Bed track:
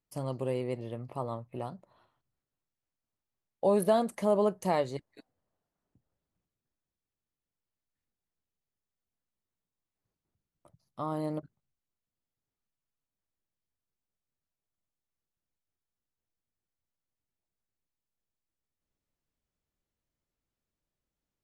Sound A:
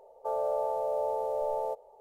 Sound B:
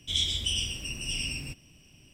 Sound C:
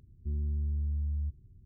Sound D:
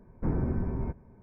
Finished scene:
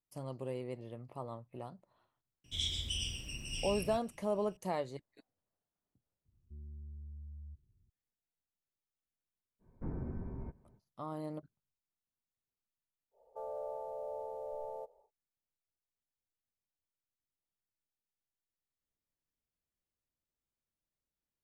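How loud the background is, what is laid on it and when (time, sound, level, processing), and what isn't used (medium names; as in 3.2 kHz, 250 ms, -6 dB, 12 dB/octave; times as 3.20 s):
bed track -8 dB
2.44 s: add B -9 dB + bass shelf 150 Hz +4.5 dB
6.25 s: add C -16.5 dB
9.59 s: add D -11.5 dB, fades 0.05 s + treble shelf 2.1 kHz -4.5 dB
13.11 s: add A -14.5 dB, fades 0.10 s + bass shelf 480 Hz +7.5 dB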